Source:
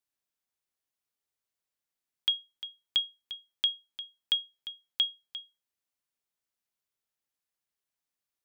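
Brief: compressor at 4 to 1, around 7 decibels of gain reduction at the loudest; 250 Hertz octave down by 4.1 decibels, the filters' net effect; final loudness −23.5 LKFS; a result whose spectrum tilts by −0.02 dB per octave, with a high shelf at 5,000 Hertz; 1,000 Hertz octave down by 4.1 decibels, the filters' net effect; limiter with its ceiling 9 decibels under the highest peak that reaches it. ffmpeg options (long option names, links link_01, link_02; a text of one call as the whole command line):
ffmpeg -i in.wav -af "equalizer=frequency=250:width_type=o:gain=-5.5,equalizer=frequency=1000:width_type=o:gain=-5.5,highshelf=frequency=5000:gain=6.5,acompressor=threshold=-29dB:ratio=4,volume=16.5dB,alimiter=limit=-7.5dB:level=0:latency=1" out.wav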